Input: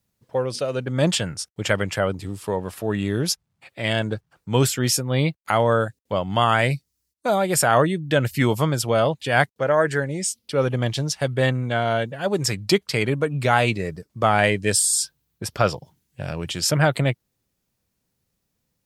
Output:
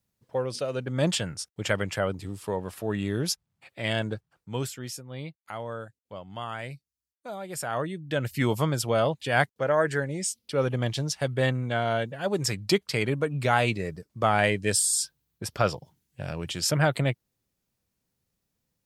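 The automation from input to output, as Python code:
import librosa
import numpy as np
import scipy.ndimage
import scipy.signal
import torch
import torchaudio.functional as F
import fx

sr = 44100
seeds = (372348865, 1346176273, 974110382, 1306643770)

y = fx.gain(x, sr, db=fx.line((4.07, -5.0), (4.94, -17.0), (7.36, -17.0), (8.53, -4.5)))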